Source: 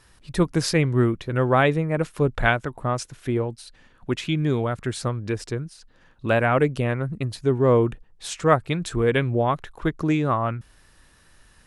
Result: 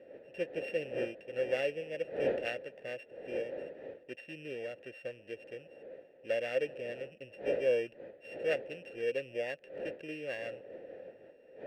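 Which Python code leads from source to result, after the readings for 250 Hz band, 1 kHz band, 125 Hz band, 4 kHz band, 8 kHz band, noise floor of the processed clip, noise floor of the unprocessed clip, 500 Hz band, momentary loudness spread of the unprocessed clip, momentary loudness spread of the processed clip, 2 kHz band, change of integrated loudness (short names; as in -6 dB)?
-22.0 dB, -25.0 dB, -31.5 dB, -13.5 dB, under -25 dB, -60 dBFS, -56 dBFS, -10.0 dB, 12 LU, 16 LU, -14.0 dB, -14.0 dB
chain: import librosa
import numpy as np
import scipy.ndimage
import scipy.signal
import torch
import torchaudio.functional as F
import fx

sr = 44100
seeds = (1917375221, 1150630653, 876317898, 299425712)

y = np.r_[np.sort(x[:len(x) // 16 * 16].reshape(-1, 16), axis=1).ravel(), x[len(x) // 16 * 16:]]
y = fx.dmg_wind(y, sr, seeds[0], corner_hz=470.0, level_db=-28.0)
y = fx.vowel_filter(y, sr, vowel='e')
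y = F.gain(torch.from_numpy(y), -4.5).numpy()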